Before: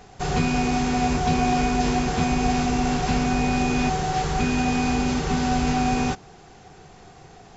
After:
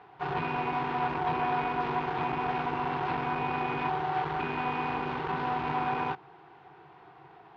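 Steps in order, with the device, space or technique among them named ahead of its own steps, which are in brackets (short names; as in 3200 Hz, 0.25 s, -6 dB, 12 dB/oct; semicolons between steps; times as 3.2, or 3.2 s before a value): guitar amplifier (tube stage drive 20 dB, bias 0.65; tone controls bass -11 dB, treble -10 dB; speaker cabinet 80–3600 Hz, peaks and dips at 140 Hz +9 dB, 230 Hz -9 dB, 330 Hz +7 dB, 560 Hz -7 dB, 960 Hz +10 dB, 1400 Hz +3 dB); gain -2.5 dB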